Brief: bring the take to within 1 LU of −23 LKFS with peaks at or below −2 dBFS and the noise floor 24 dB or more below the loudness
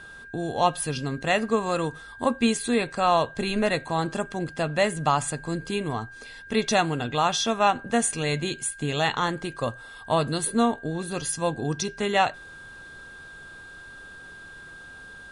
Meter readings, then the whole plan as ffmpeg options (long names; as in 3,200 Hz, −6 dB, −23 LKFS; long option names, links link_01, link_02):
interfering tone 1,600 Hz; level of the tone −42 dBFS; integrated loudness −25.5 LKFS; sample peak −7.5 dBFS; target loudness −23.0 LKFS
→ -af "bandreject=frequency=1600:width=30"
-af "volume=2.5dB"